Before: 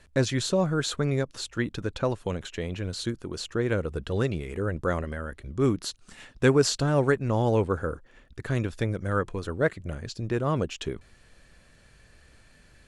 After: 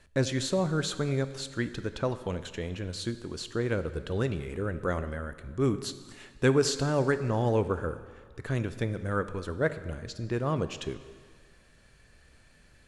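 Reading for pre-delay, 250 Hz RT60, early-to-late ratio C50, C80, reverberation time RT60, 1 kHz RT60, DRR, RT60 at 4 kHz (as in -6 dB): 15 ms, 1.6 s, 12.5 dB, 13.5 dB, 1.8 s, 1.8 s, 11.5 dB, 1.6 s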